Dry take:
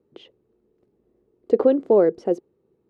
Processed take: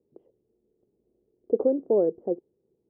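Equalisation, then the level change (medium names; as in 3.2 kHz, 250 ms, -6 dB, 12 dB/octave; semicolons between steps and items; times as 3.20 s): four-pole ladder low-pass 860 Hz, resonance 20%; -2.0 dB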